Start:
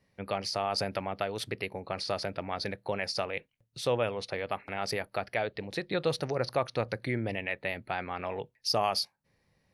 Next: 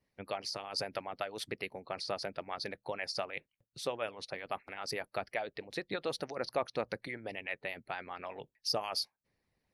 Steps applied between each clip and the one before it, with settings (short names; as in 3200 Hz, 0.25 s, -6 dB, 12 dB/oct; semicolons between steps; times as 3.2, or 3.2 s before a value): harmonic-percussive split harmonic -17 dB; gain -3.5 dB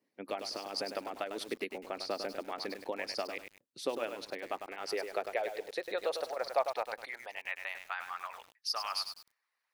high-pass sweep 280 Hz -> 1200 Hz, 4.21–7.94; lo-fi delay 0.101 s, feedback 35%, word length 8-bit, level -7 dB; gain -1.5 dB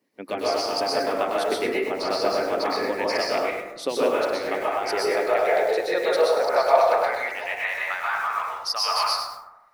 plate-style reverb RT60 1 s, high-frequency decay 0.3×, pre-delay 0.11 s, DRR -6.5 dB; gain +7 dB